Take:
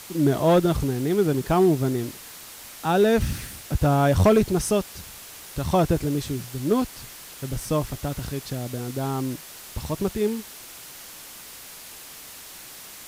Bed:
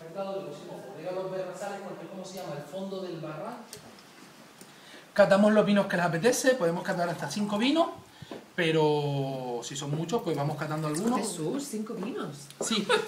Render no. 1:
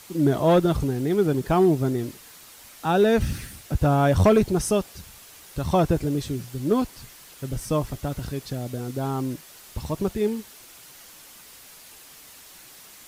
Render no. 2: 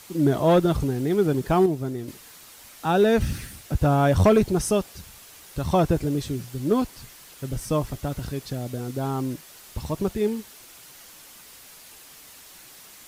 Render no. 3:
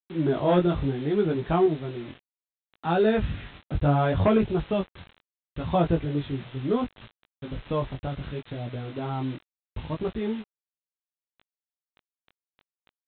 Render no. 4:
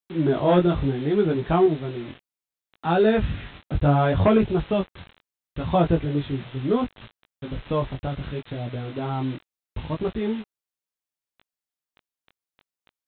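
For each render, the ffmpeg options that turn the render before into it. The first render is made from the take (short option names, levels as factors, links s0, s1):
-af "afftdn=nr=6:nf=-42"
-filter_complex "[0:a]asplit=3[s0][s1][s2];[s0]atrim=end=1.662[s3];[s1]atrim=start=1.658:end=2.082,asetpts=PTS-STARTPTS,volume=0.531[s4];[s2]atrim=start=2.078[s5];[s3][s4]acrossfade=d=0.004:c1=hsin:c2=hsin[s6];[s6][s5]acrossfade=d=0.004:c1=hsin:c2=hsin"
-af "aresample=8000,acrusher=bits=6:mix=0:aa=0.000001,aresample=44100,flanger=delay=17.5:depth=5.1:speed=0.69"
-af "volume=1.41"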